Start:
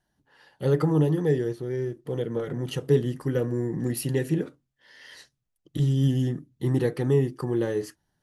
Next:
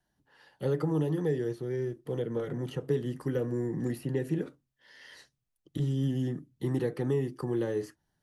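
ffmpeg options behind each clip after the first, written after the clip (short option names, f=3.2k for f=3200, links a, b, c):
-filter_complex "[0:a]acrossover=split=140|1000|2000[a][b][c][d];[a]acompressor=threshold=-38dB:ratio=4[e];[b]acompressor=threshold=-23dB:ratio=4[f];[c]acompressor=threshold=-46dB:ratio=4[g];[d]acompressor=threshold=-50dB:ratio=4[h];[e][f][g][h]amix=inputs=4:normalize=0,volume=-3dB"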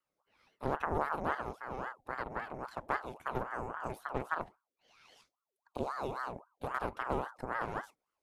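-af "aeval=exprs='0.158*(cos(1*acos(clip(val(0)/0.158,-1,1)))-cos(1*PI/2))+0.0708*(cos(4*acos(clip(val(0)/0.158,-1,1)))-cos(4*PI/2))':c=same,aeval=exprs='val(0)*sin(2*PI*830*n/s+830*0.55/3.7*sin(2*PI*3.7*n/s))':c=same,volume=-7dB"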